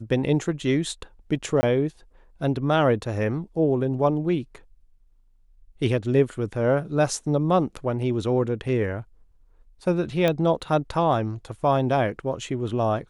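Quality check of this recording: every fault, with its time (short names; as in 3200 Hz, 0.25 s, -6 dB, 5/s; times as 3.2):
1.61–1.63 gap 20 ms
10.28 pop -10 dBFS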